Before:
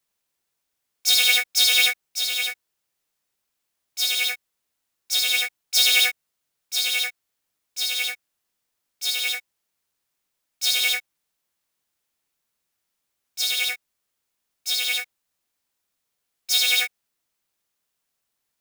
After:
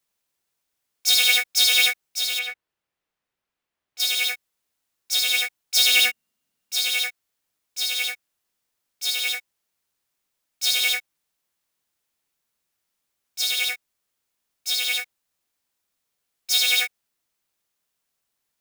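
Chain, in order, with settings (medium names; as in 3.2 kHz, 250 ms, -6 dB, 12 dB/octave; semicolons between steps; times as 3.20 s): 2.39–4.00 s: tone controls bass 0 dB, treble -13 dB; 5.89–6.74 s: small resonant body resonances 220/2800 Hz, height 12 dB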